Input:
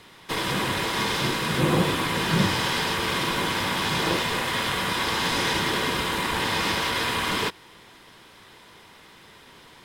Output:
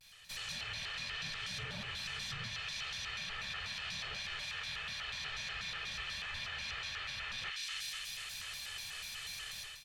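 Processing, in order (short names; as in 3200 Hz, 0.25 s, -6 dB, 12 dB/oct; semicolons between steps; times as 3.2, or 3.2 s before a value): on a send: thin delay 0.124 s, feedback 67%, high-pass 1800 Hz, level -7 dB; on the sum: AGC gain up to 16 dB; resonator 510 Hz, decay 0.59 s, mix 70%; treble ducked by the level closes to 3000 Hz, closed at -20 dBFS; passive tone stack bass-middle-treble 10-0-10; reverse; compressor 10:1, threshold -41 dBFS, peak gain reduction 13.5 dB; reverse; bell 980 Hz -9.5 dB 1.1 oct; comb 1.4 ms, depth 49%; reverse echo 0.253 s -21 dB; shaped vibrato square 4.1 Hz, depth 250 cents; gain +3 dB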